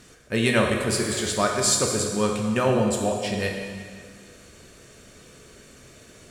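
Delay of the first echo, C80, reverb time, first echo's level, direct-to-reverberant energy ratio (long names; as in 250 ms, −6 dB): no echo audible, 4.5 dB, 1.8 s, no echo audible, 0.5 dB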